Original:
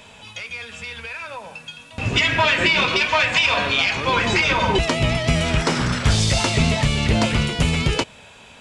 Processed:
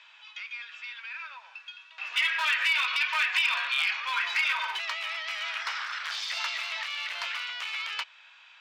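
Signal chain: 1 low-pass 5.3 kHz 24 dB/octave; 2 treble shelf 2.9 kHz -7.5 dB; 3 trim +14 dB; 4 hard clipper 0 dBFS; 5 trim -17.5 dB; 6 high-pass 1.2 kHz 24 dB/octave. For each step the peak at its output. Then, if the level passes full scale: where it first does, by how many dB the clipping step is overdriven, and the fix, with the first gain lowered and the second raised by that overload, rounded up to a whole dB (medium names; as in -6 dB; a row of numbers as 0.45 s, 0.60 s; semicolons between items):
-5.0 dBFS, -6.5 dBFS, +7.5 dBFS, 0.0 dBFS, -17.5 dBFS, -14.0 dBFS; step 3, 7.5 dB; step 3 +6 dB, step 5 -9.5 dB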